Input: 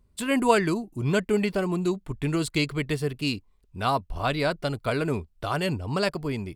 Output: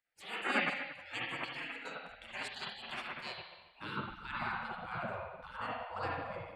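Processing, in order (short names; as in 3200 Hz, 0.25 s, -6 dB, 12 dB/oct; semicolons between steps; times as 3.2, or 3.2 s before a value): band-pass sweep 1100 Hz -> 320 Hz, 2.85–4.71; spring tank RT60 1.1 s, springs 44/57 ms, chirp 35 ms, DRR -4.5 dB; spectral gate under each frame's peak -20 dB weak; gain +7.5 dB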